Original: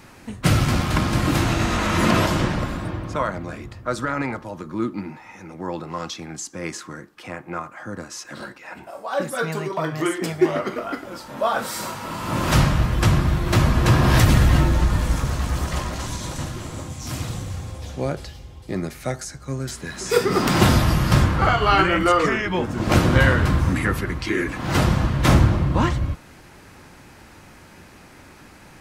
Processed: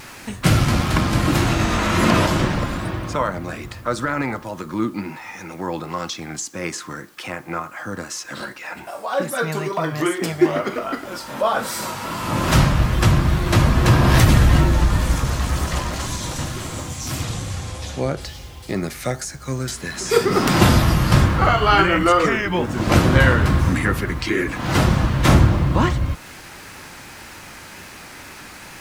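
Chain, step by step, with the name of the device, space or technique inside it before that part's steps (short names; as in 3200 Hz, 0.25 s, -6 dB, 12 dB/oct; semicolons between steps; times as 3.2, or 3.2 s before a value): noise-reduction cassette on a plain deck (mismatched tape noise reduction encoder only; wow and flutter; white noise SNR 37 dB); 17.23–18.21 LPF 11000 Hz 12 dB/oct; gain +2 dB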